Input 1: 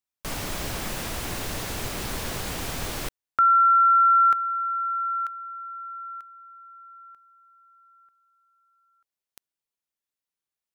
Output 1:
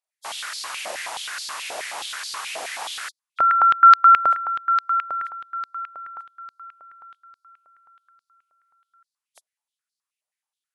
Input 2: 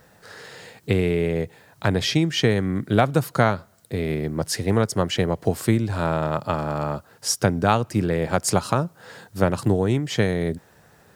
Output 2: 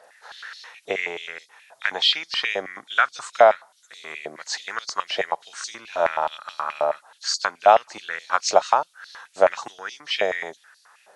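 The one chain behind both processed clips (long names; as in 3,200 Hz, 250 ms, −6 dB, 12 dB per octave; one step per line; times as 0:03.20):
hearing-aid frequency compression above 3,200 Hz 1.5 to 1
high-pass on a step sequencer 9.4 Hz 640–4,400 Hz
level −1 dB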